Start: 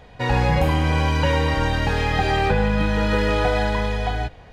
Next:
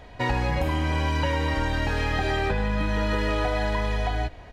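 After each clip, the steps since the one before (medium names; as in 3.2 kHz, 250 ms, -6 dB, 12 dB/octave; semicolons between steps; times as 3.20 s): comb 3.1 ms, depth 37%; compression 4:1, threshold -22 dBFS, peak gain reduction 7.5 dB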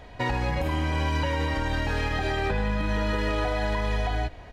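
peak limiter -18 dBFS, peak gain reduction 4 dB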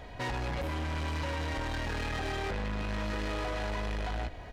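saturation -31.5 dBFS, distortion -8 dB; crackle 82 per s -58 dBFS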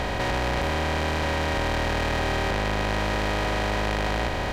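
spectral levelling over time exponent 0.2; trim +3 dB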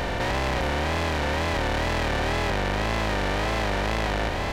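wow and flutter 120 cents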